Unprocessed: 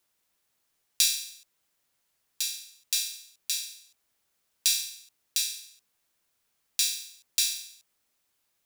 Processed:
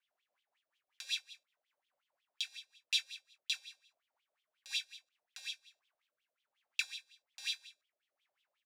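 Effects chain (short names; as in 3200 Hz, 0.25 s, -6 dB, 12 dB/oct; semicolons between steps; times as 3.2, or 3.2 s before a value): wah 5.5 Hz 560–3400 Hz, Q 8.3; rotary speaker horn 5 Hz, later 1.2 Hz, at 4.95; doubler 21 ms -12 dB; gain +10.5 dB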